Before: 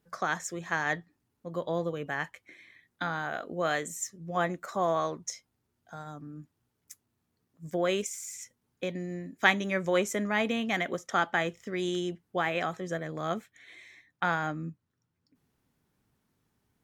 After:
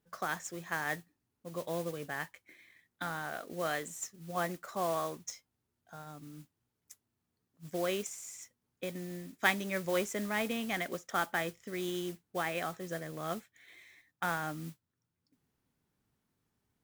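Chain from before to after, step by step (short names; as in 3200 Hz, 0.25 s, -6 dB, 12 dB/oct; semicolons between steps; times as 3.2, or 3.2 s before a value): modulation noise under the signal 14 dB; gain -5.5 dB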